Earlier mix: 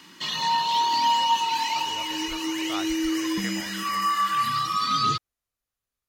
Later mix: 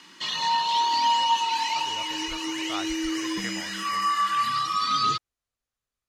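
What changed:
background: add low-shelf EQ 230 Hz −9.5 dB
master: add low-pass filter 9,500 Hz 12 dB per octave

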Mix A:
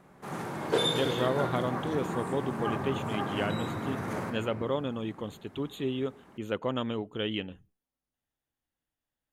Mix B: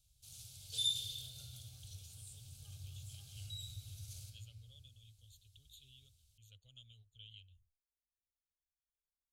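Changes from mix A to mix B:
speech −9.0 dB
master: add inverse Chebyshev band-stop filter 170–2,000 Hz, stop band 40 dB

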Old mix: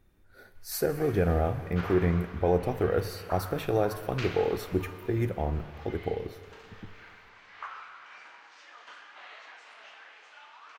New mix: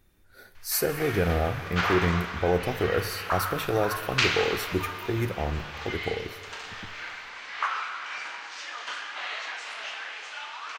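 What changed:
background +10.0 dB
master: add high-shelf EQ 2,100 Hz +8.5 dB

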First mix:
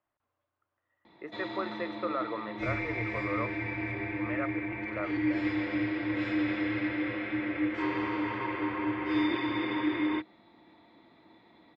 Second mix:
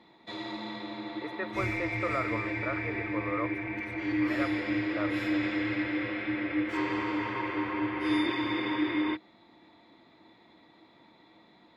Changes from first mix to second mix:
background: entry −1.05 s
master: remove high-frequency loss of the air 130 metres

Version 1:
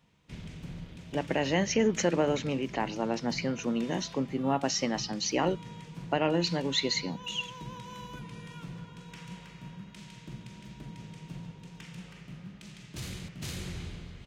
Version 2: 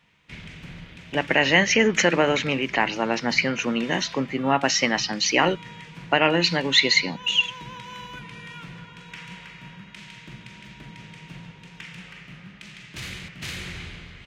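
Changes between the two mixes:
speech +4.0 dB
master: add parametric band 2,100 Hz +12.5 dB 1.9 octaves

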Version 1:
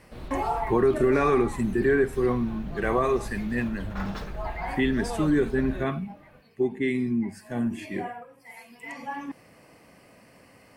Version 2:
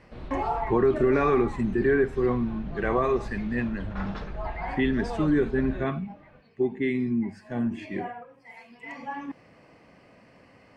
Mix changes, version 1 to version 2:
speech: add high-shelf EQ 10,000 Hz +8 dB
master: add high-frequency loss of the air 150 metres

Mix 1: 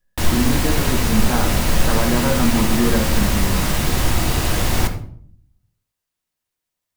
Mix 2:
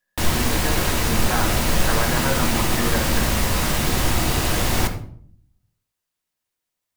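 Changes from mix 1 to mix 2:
speech: add spectral tilt +4.5 dB per octave
master: add low-shelf EQ 140 Hz −4 dB

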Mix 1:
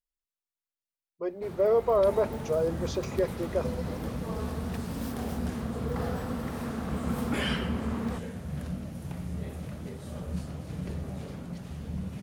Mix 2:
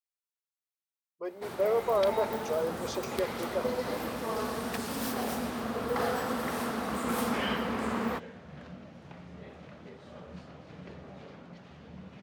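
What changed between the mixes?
first sound +8.5 dB
second sound: add high-frequency loss of the air 180 metres
master: add high-pass filter 610 Hz 6 dB per octave

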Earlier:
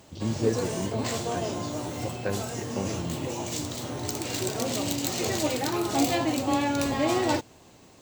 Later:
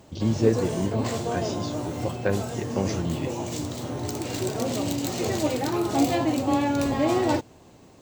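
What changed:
speech +5.5 dB
background: add tilt shelving filter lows +3.5 dB, about 1,200 Hz

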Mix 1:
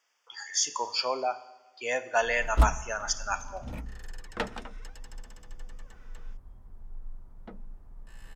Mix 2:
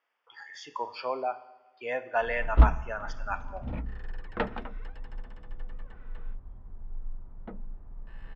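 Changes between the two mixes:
background +4.0 dB
master: add high-frequency loss of the air 410 metres

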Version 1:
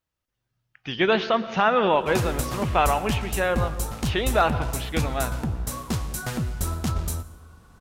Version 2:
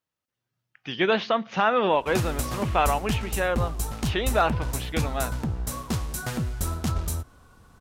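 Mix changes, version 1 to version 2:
speech: add high-pass filter 120 Hz
reverb: off

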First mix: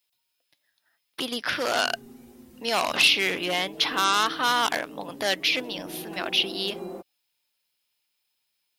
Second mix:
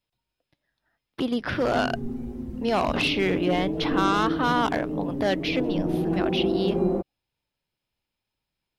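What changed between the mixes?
background +6.0 dB
master: add spectral tilt −4.5 dB per octave

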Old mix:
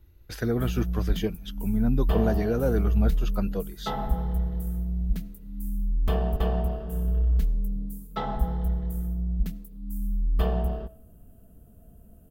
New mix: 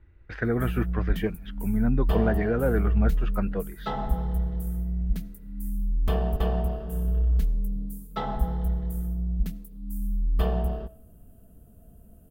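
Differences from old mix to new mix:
speech: add low-pass with resonance 1,900 Hz, resonance Q 2.3
background: add parametric band 9,600 Hz +2.5 dB 0.32 octaves

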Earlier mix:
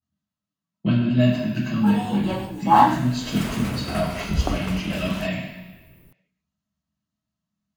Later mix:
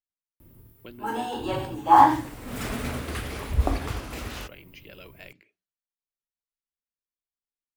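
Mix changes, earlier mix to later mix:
background: entry −0.80 s
reverb: off

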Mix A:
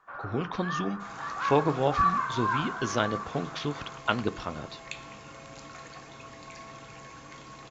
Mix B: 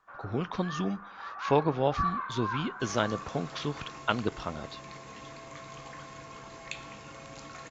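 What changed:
speech: send −9.5 dB
first sound −6.0 dB
second sound: entry +1.80 s

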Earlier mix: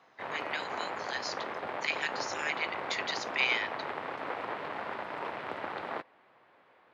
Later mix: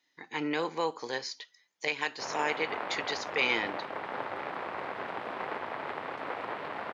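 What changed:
speech: remove Butterworth high-pass 1,400 Hz 36 dB per octave
background: entry +2.00 s

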